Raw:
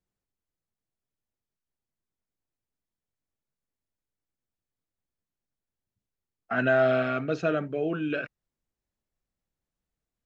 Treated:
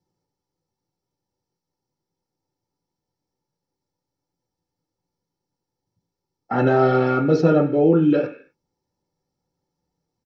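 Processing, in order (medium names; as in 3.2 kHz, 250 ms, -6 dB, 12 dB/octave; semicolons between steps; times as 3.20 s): peaking EQ 220 Hz +4.5 dB 0.76 oct; comb 2.3 ms, depth 83%; reverberation RT60 0.40 s, pre-delay 3 ms, DRR 1.5 dB; trim -3.5 dB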